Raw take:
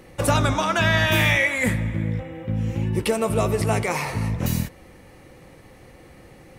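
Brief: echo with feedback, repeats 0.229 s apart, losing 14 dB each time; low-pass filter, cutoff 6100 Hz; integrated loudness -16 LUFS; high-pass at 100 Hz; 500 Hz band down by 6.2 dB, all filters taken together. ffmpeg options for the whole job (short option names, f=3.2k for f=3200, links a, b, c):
-af "highpass=100,lowpass=6.1k,equalizer=f=500:t=o:g=-8,aecho=1:1:229|458:0.2|0.0399,volume=8dB"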